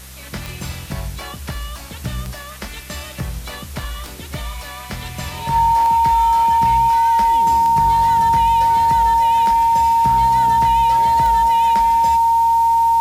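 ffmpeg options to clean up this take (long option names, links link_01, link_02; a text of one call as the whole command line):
ffmpeg -i in.wav -af "adeclick=threshold=4,bandreject=frequency=65.2:width_type=h:width=4,bandreject=frequency=130.4:width_type=h:width=4,bandreject=frequency=195.6:width_type=h:width=4,bandreject=frequency=920:width=30,afwtdn=0.011" out.wav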